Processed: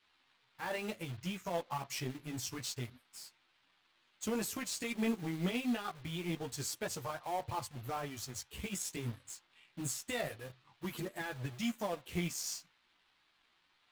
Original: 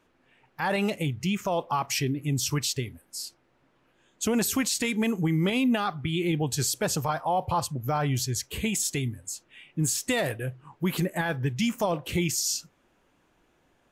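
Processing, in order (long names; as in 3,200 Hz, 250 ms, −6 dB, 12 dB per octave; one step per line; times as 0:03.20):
in parallel at −6.5 dB: wrap-around overflow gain 34 dB
on the sum: noise in a band 780–4,100 Hz −52 dBFS
multi-voice chorus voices 2, 0.27 Hz, delay 13 ms, depth 4.7 ms
power curve on the samples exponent 1.4
level −5 dB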